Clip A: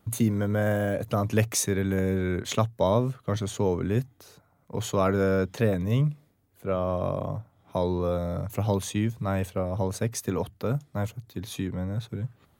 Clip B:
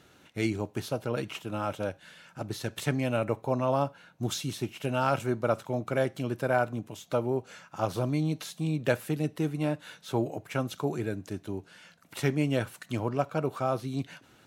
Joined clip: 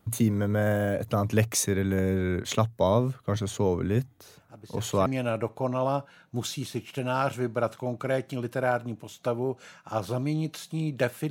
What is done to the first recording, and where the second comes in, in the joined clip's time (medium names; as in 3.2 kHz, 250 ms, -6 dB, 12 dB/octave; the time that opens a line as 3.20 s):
clip A
4.24 s: add clip B from 2.11 s 0.82 s -12.5 dB
5.06 s: go over to clip B from 2.93 s